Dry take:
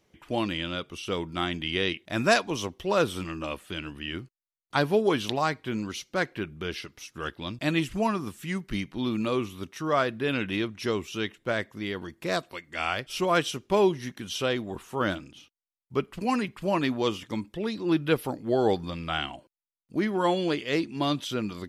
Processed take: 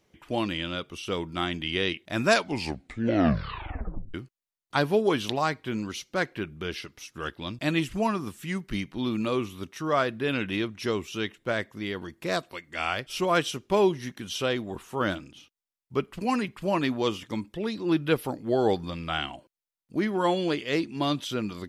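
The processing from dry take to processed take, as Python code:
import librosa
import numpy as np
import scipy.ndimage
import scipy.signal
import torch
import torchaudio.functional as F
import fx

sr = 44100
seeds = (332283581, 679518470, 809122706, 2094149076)

y = fx.edit(x, sr, fx.tape_stop(start_s=2.29, length_s=1.85), tone=tone)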